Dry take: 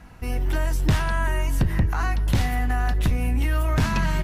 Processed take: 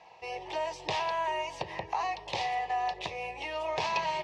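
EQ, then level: speaker cabinet 430–5300 Hz, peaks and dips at 890 Hz +8 dB, 1700 Hz +4 dB, 2500 Hz +5 dB; fixed phaser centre 610 Hz, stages 4; 0.0 dB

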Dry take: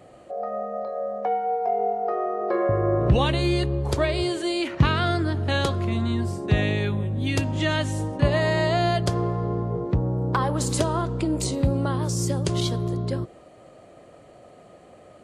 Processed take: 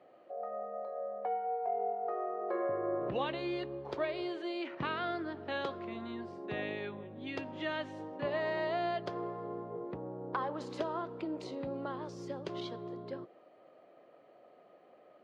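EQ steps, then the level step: HPF 330 Hz 12 dB/oct; air absorption 270 m; -9.0 dB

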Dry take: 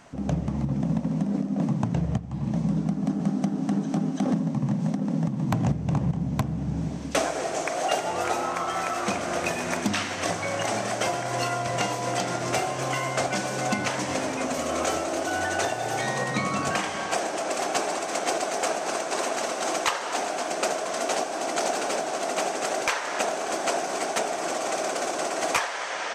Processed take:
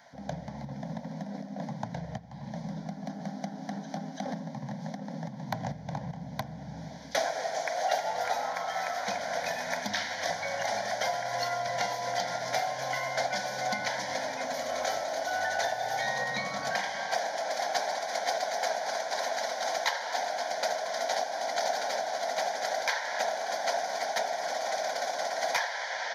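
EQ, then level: HPF 500 Hz 6 dB/oct; fixed phaser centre 1800 Hz, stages 8; 0.0 dB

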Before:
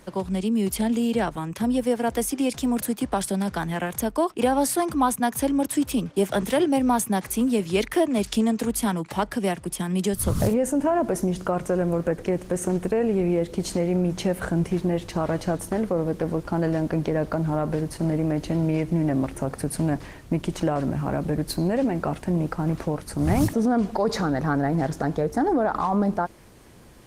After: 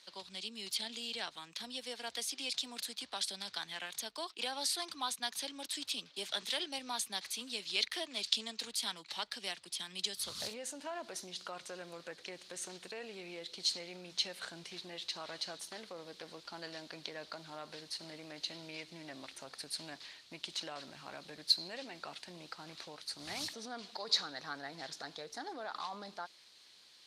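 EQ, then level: band-pass 4100 Hz, Q 3.9; +7.0 dB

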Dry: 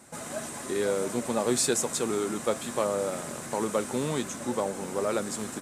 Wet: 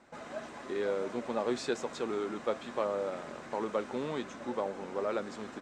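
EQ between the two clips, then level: air absorption 200 m; bell 120 Hz -9.5 dB 1.7 oct; -3.0 dB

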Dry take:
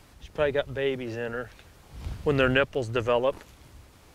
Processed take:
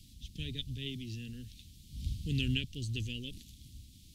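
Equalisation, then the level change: elliptic band-stop 240–3400 Hz, stop band 60 dB; dynamic EQ 220 Hz, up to -6 dB, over -46 dBFS, Q 1.6; bell 1900 Hz +3 dB 2.3 oct; 0.0 dB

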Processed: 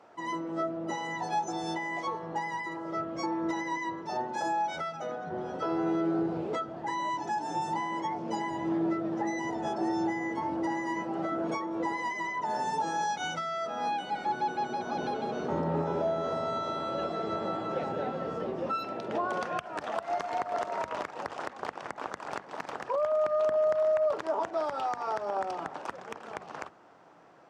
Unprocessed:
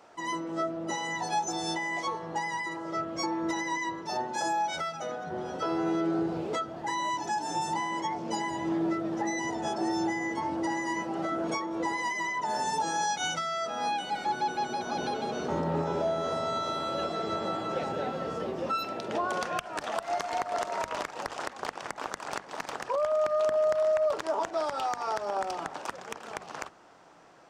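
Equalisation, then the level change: HPF 76 Hz; high shelf 3100 Hz -10.5 dB; high shelf 12000 Hz -4.5 dB; 0.0 dB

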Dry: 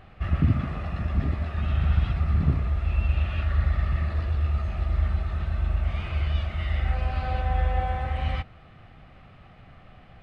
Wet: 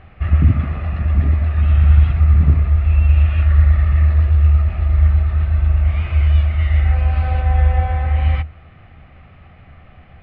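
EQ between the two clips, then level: air absorption 220 m; bell 77 Hz +11 dB 0.27 oct; bell 2200 Hz +5 dB 0.67 oct; +4.5 dB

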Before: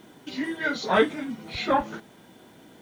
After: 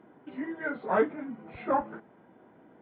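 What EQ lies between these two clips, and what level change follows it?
Gaussian blur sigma 4.4 samples; HPF 910 Hz 6 dB/oct; tilt -3 dB/oct; 0.0 dB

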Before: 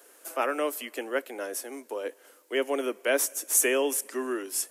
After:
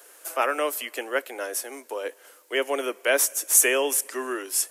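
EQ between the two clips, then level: bell 150 Hz -12.5 dB 1.7 oct; low shelf 400 Hz -3.5 dB; +5.5 dB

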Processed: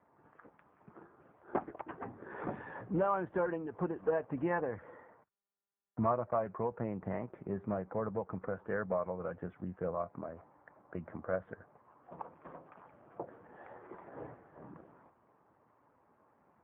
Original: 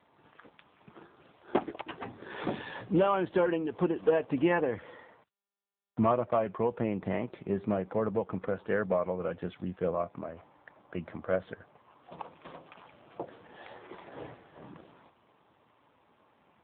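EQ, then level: LPF 1700 Hz 24 dB/oct; dynamic EQ 320 Hz, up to -6 dB, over -39 dBFS, Q 0.8; -2.5 dB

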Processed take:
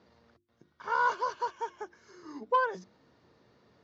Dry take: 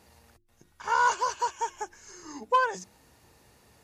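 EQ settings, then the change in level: air absorption 190 m; speaker cabinet 140–6000 Hz, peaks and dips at 830 Hz -8 dB, 1800 Hz -4 dB, 2600 Hz -9 dB; 0.0 dB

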